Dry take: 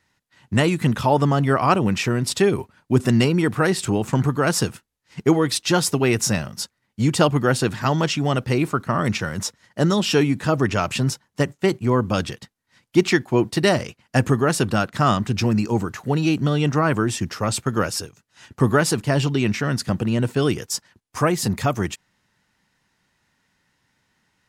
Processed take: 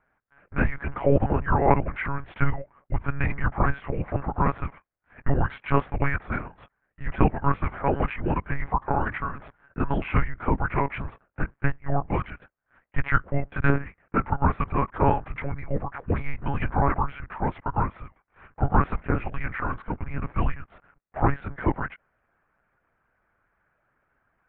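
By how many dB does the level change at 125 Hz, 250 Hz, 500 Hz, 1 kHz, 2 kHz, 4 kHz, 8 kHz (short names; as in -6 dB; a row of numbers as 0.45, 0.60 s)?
-6.0 dB, -9.0 dB, -8.5 dB, -2.0 dB, -5.0 dB, under -20 dB, under -40 dB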